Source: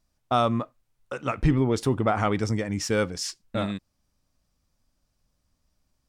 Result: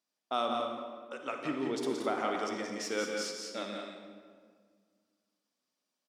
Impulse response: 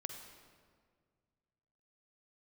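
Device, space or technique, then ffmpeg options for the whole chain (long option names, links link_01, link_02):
stadium PA: -filter_complex "[0:a]highpass=frequency=250:width=0.5412,highpass=frequency=250:width=1.3066,equalizer=frequency=3400:width_type=o:width=1.1:gain=5,aecho=1:1:174.9|207:0.501|0.316[link_01];[1:a]atrim=start_sample=2205[link_02];[link_01][link_02]afir=irnorm=-1:irlink=0,volume=-7dB"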